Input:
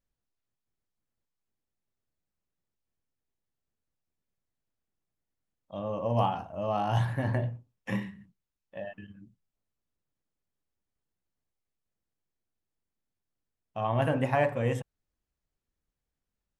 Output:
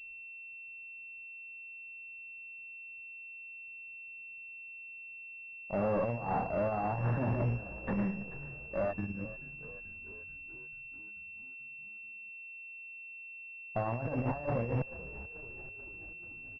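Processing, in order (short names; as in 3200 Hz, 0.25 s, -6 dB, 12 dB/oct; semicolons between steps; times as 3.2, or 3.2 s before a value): 6.35–8.97 HPF 120 Hz 24 dB/oct; negative-ratio compressor -33 dBFS, ratio -0.5; tube stage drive 35 dB, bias 0.55; frequency-shifting echo 0.436 s, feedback 64%, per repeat -57 Hz, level -16 dB; pulse-width modulation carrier 2700 Hz; gain +8 dB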